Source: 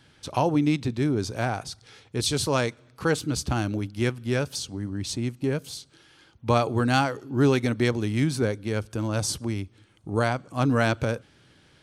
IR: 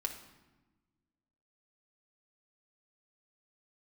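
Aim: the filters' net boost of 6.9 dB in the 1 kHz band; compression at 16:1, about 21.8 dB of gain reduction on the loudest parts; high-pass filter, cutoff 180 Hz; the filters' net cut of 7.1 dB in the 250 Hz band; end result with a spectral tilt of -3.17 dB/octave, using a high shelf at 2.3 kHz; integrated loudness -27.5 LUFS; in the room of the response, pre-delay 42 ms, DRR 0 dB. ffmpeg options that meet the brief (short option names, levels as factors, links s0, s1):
-filter_complex "[0:a]highpass=180,equalizer=f=250:t=o:g=-8.5,equalizer=f=1000:t=o:g=9,highshelf=f=2300:g=4.5,acompressor=threshold=0.0178:ratio=16,asplit=2[s0][s1];[1:a]atrim=start_sample=2205,adelay=42[s2];[s1][s2]afir=irnorm=-1:irlink=0,volume=0.891[s3];[s0][s3]amix=inputs=2:normalize=0,volume=3.16"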